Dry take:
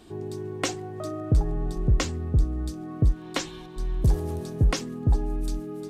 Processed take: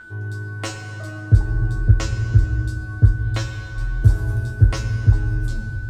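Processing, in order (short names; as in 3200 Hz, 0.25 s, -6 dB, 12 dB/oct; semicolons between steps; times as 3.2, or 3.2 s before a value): tape stop at the end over 0.44 s; resonant low shelf 140 Hz +9 dB, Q 1.5; in parallel at -7 dB: crossover distortion -35.5 dBFS; on the sum: whine 1500 Hz -30 dBFS; resonator 110 Hz, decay 0.18 s, harmonics all, mix 100%; on a send at -6.5 dB: reverb RT60 2.7 s, pre-delay 3 ms; on the sum: Doppler distortion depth 0.1 ms; gain +4 dB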